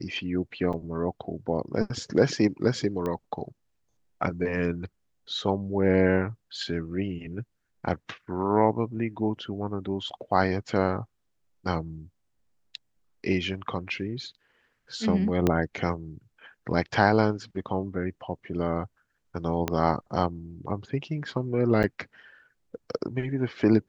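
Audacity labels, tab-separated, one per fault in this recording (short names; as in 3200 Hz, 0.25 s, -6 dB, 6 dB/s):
0.730000	0.740000	gap 5.4 ms
3.060000	3.060000	pop -19 dBFS
15.470000	15.470000	pop -10 dBFS
19.680000	19.680000	pop -11 dBFS
21.830000	21.840000	gap 9.2 ms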